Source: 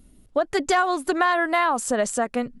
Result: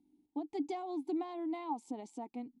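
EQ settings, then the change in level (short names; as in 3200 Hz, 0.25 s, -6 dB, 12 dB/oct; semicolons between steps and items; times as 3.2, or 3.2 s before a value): vowel filter u; low shelf 340 Hz -8.5 dB; band shelf 1700 Hz -14 dB; +1.5 dB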